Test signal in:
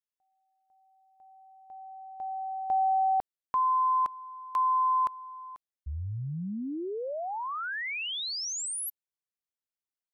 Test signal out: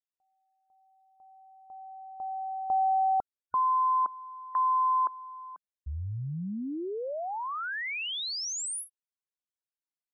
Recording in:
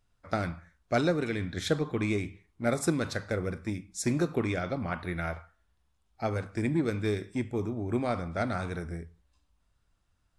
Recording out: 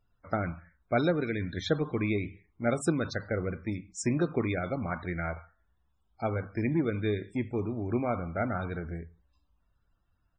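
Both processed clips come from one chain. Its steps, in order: loudest bins only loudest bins 64; downsampling 22050 Hz

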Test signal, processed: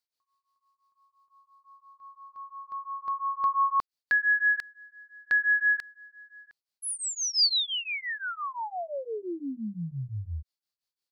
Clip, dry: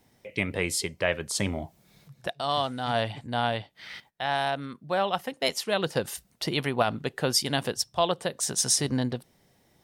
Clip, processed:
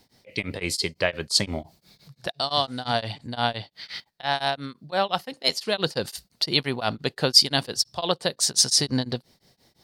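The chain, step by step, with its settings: bell 4500 Hz +13.5 dB 0.5 oct; beating tremolo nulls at 5.8 Hz; gain +3.5 dB

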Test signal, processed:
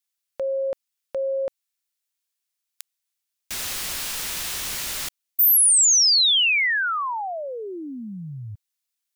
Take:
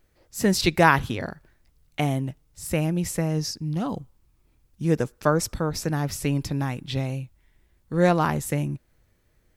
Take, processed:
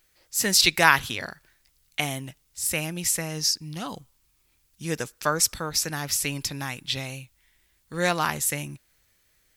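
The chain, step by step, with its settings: tilt shelf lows -9.5 dB, about 1200 Hz

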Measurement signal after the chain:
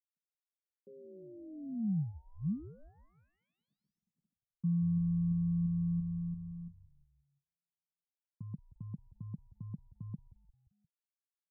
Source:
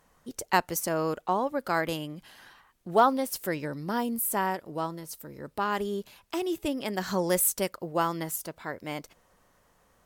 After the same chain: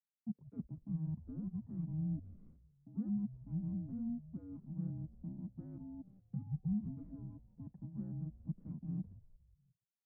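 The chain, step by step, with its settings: gate -54 dBFS, range -36 dB; reverse; compressor 6:1, threshold -36 dBFS; reverse; sample leveller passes 2; in parallel at +1 dB: vocal rider within 3 dB 0.5 s; on the sum: ring modulator 470 Hz; Butterworth band-pass 180 Hz, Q 2.2; frequency-shifting echo 0.175 s, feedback 49%, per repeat -78 Hz, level -16.5 dB; gain -2 dB

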